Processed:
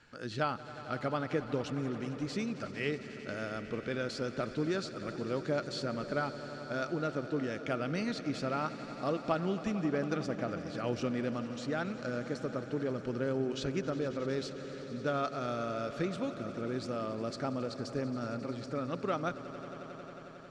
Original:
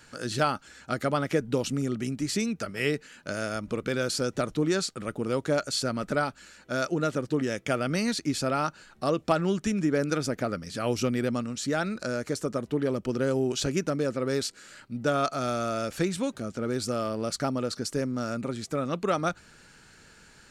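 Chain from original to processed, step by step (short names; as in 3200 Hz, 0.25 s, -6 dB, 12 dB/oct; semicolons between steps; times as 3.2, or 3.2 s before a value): LPF 4100 Hz 12 dB/oct; swelling echo 90 ms, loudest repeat 5, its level -17 dB; gain -7 dB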